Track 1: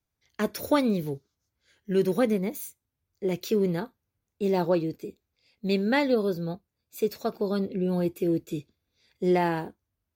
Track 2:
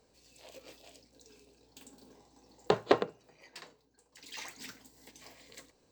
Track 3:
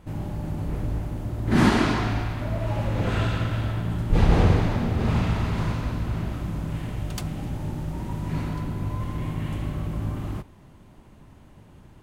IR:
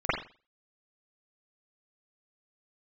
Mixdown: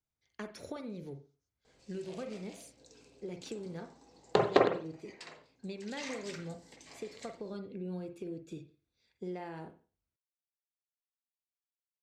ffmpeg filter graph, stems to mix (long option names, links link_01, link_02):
-filter_complex "[0:a]acompressor=threshold=-29dB:ratio=12,volume=-10dB,asplit=2[link_01][link_02];[link_02]volume=-21dB[link_03];[1:a]adelay=1650,volume=-1.5dB,asplit=2[link_04][link_05];[link_05]volume=-15dB[link_06];[3:a]atrim=start_sample=2205[link_07];[link_03][link_06]amix=inputs=2:normalize=0[link_08];[link_08][link_07]afir=irnorm=-1:irlink=0[link_09];[link_01][link_04][link_09]amix=inputs=3:normalize=0,lowpass=frequency=9200:width=0.5412,lowpass=frequency=9200:width=1.3066"